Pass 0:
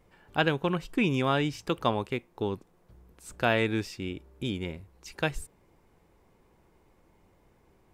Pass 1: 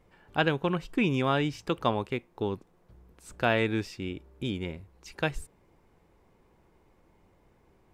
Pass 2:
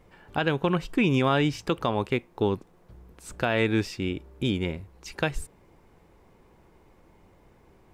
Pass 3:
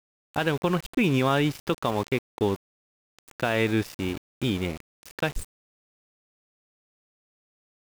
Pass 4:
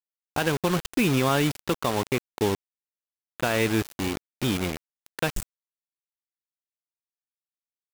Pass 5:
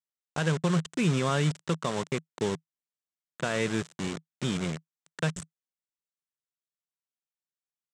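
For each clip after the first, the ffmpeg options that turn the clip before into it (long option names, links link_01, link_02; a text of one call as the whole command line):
ffmpeg -i in.wav -af "highshelf=frequency=6300:gain=-5.5" out.wav
ffmpeg -i in.wav -af "alimiter=limit=-19dB:level=0:latency=1:release=168,volume=6dB" out.wav
ffmpeg -i in.wav -af "aeval=exprs='val(0)*gte(abs(val(0)),0.0211)':channel_layout=same" out.wav
ffmpeg -i in.wav -af "acrusher=bits=4:mix=0:aa=0.000001" out.wav
ffmpeg -i in.wav -af "highpass=120,equalizer=frequency=160:width_type=q:width=4:gain=10,equalizer=frequency=300:width_type=q:width=4:gain=-7,equalizer=frequency=800:width_type=q:width=4:gain=-6,equalizer=frequency=2500:width_type=q:width=4:gain=-4,equalizer=frequency=4600:width_type=q:width=4:gain=-4,equalizer=frequency=7900:width_type=q:width=4:gain=5,lowpass=frequency=7900:width=0.5412,lowpass=frequency=7900:width=1.3066,volume=-3.5dB" out.wav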